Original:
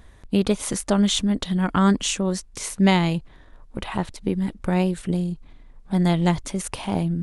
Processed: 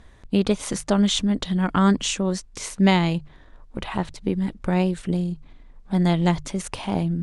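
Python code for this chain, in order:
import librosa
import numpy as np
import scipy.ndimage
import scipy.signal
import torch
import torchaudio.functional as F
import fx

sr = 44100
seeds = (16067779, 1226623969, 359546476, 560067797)

y = scipy.signal.sosfilt(scipy.signal.butter(2, 8300.0, 'lowpass', fs=sr, output='sos'), x)
y = fx.hum_notches(y, sr, base_hz=50, count=3)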